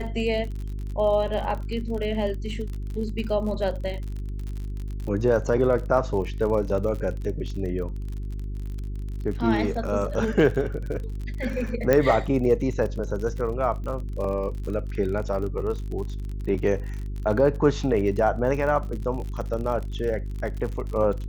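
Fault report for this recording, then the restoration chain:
surface crackle 45 per second −32 dBFS
mains hum 50 Hz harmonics 8 −31 dBFS
0:11.93: click −8 dBFS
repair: click removal
hum removal 50 Hz, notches 8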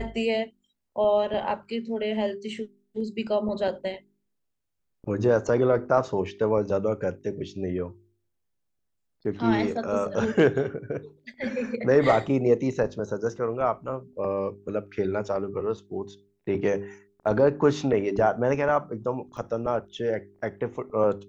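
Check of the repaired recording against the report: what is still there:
none of them is left

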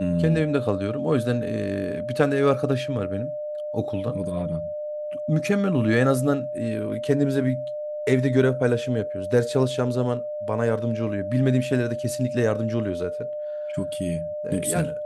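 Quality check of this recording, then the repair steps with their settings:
whistle 600 Hz −28 dBFS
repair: notch filter 600 Hz, Q 30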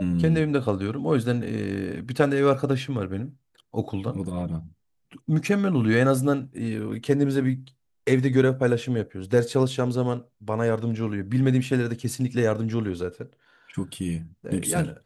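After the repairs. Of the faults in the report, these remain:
none of them is left

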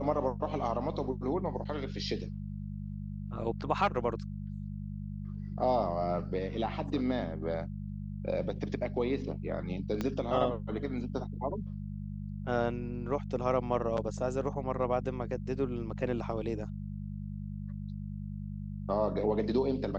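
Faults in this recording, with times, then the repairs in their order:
mains hum 50 Hz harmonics 4 −39 dBFS
0:10.01: click −19 dBFS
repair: click removal
hum removal 50 Hz, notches 4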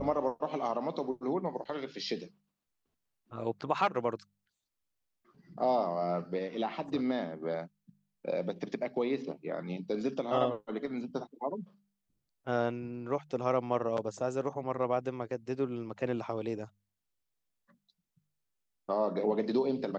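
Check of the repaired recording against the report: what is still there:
0:10.01: click

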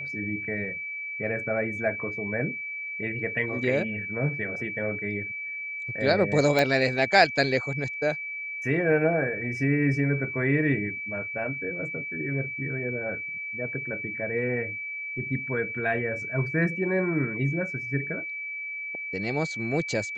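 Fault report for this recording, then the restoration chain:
whistle 2,300 Hz −32 dBFS
0:06.59: click −10 dBFS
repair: click removal
notch filter 2,300 Hz, Q 30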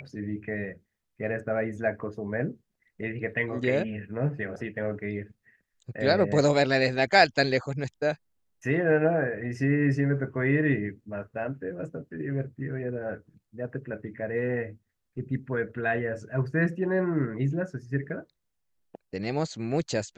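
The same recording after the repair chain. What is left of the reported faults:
none of them is left

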